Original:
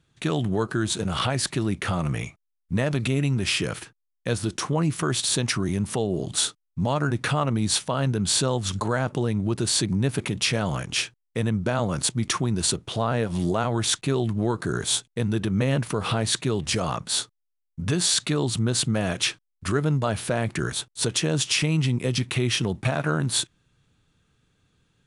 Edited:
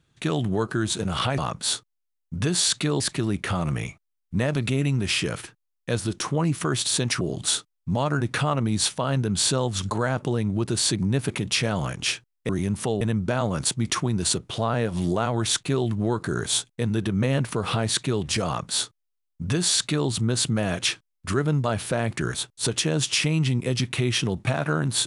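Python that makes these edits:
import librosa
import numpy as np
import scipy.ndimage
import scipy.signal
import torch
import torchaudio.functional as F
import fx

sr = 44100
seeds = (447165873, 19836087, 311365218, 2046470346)

y = fx.edit(x, sr, fx.move(start_s=5.59, length_s=0.52, to_s=11.39),
    fx.duplicate(start_s=16.84, length_s=1.62, to_s=1.38), tone=tone)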